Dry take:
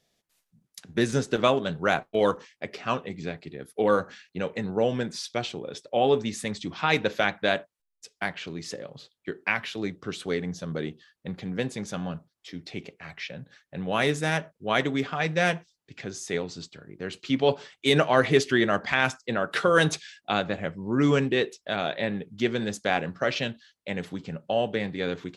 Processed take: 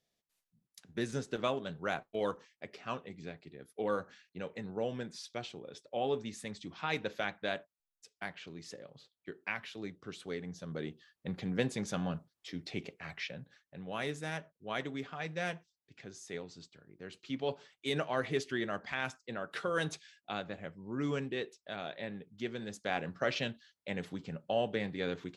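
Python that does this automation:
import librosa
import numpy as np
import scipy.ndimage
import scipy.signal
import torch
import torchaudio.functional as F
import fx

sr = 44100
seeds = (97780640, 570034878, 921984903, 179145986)

y = fx.gain(x, sr, db=fx.line((10.43, -11.5), (11.4, -3.0), (13.18, -3.0), (13.79, -13.0), (22.64, -13.0), (23.17, -6.5)))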